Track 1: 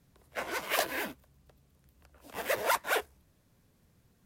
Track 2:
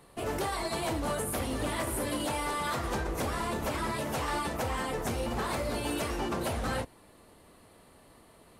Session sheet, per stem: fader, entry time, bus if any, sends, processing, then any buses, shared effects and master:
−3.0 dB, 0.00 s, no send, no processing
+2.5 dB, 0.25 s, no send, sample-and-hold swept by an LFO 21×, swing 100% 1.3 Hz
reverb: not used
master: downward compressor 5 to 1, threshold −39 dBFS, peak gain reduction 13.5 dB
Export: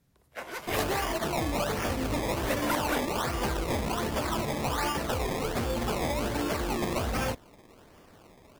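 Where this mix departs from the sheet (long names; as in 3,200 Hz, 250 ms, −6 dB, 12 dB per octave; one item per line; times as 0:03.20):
stem 2: entry 0.25 s → 0.50 s
master: missing downward compressor 5 to 1, threshold −39 dBFS, peak gain reduction 13.5 dB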